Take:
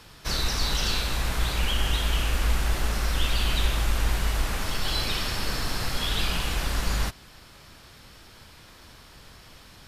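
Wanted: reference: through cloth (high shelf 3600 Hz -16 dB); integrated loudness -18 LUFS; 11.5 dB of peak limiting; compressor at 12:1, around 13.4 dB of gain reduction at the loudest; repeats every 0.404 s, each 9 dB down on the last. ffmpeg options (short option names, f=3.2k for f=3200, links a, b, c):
-af "acompressor=threshold=-32dB:ratio=12,alimiter=level_in=9.5dB:limit=-24dB:level=0:latency=1,volume=-9.5dB,highshelf=f=3.6k:g=-16,aecho=1:1:404|808|1212|1616:0.355|0.124|0.0435|0.0152,volume=28.5dB"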